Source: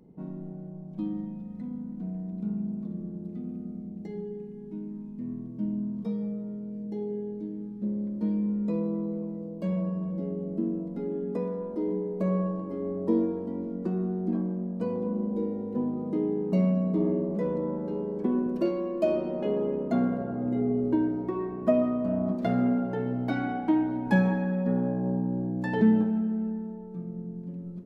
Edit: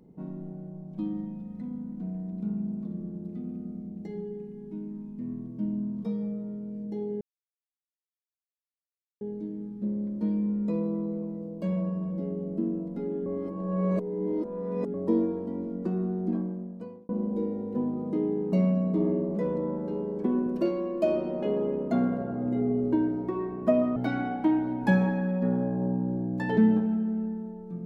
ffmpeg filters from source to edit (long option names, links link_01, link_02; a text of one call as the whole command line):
ffmpeg -i in.wav -filter_complex "[0:a]asplit=6[link_01][link_02][link_03][link_04][link_05][link_06];[link_01]atrim=end=7.21,asetpts=PTS-STARTPTS,afade=type=out:start_time=7.206:duration=0.004:curve=hsin,apad=pad_dur=2[link_07];[link_02]atrim=start=7.21:end=11.262,asetpts=PTS-STARTPTS,afade=type=in:duration=0.004:curve=hsin[link_08];[link_03]atrim=start=11.258:end=12.942,asetpts=PTS-STARTPTS,areverse[link_09];[link_04]atrim=start=12.938:end=15.09,asetpts=PTS-STARTPTS,afade=type=out:start_time=1.352:duration=0.8[link_10];[link_05]atrim=start=15.09:end=21.962,asetpts=PTS-STARTPTS,afade=type=in:duration=0.004:curve=hsin[link_11];[link_06]atrim=start=23.198[link_12];[link_07][link_08]concat=n=2:v=0:a=1[link_13];[link_13][link_09]acrossfade=duration=0.004:curve1=hsin:curve2=hsin[link_14];[link_10][link_11]concat=n=2:v=0:a=1[link_15];[link_14][link_15]acrossfade=duration=0.004:curve1=hsin:curve2=hsin[link_16];[link_16][link_12]acrossfade=duration=0.004:curve1=hsin:curve2=hsin" out.wav